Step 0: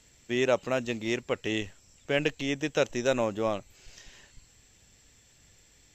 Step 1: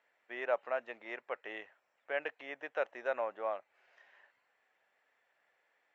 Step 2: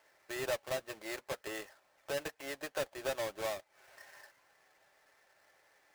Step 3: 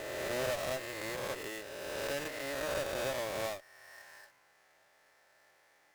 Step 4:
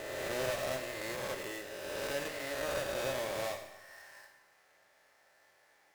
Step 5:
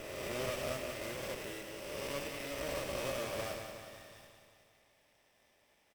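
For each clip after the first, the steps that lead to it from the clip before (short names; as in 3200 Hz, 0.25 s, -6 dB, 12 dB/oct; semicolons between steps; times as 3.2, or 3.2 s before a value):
Chebyshev band-pass 640–1800 Hz, order 2; gain -4 dB
half-waves squared off; compressor 2:1, threshold -47 dBFS, peak gain reduction 12.5 dB; notch comb 240 Hz; gain +5.5 dB
spectral swells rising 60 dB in 2.32 s; tube stage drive 28 dB, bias 0.65; gain +1 dB
Schroeder reverb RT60 0.94 s, combs from 31 ms, DRR 6 dB; gain -1 dB
minimum comb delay 0.37 ms; feedback echo 0.182 s, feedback 59%, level -7.5 dB; gain -3 dB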